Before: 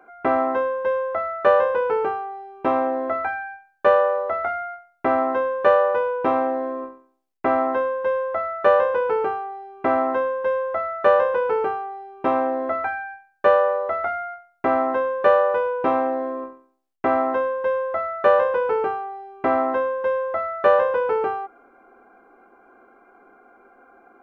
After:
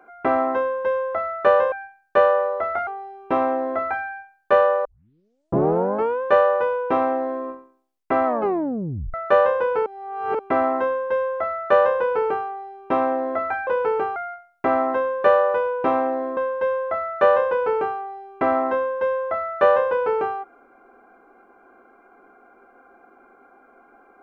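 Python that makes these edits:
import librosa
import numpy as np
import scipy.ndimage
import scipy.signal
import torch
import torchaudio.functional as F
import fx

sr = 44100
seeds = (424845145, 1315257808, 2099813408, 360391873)

y = fx.edit(x, sr, fx.swap(start_s=1.72, length_s=0.49, other_s=13.01, other_length_s=1.15),
    fx.tape_start(start_s=4.19, length_s=1.38),
    fx.tape_stop(start_s=7.6, length_s=0.88),
    fx.reverse_span(start_s=9.2, length_s=0.53),
    fx.cut(start_s=16.37, length_s=1.03), tone=tone)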